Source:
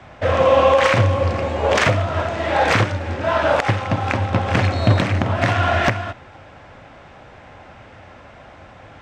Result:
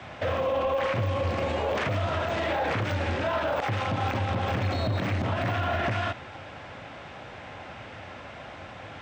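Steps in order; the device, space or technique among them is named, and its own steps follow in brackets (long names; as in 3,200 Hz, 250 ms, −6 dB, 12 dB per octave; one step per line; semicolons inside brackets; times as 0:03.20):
broadcast voice chain (high-pass filter 73 Hz 12 dB per octave; de-essing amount 100%; downward compressor, threshold −19 dBFS, peak gain reduction 8.5 dB; parametric band 3,200 Hz +4.5 dB 1.4 octaves; brickwall limiter −19.5 dBFS, peak gain reduction 8.5 dB)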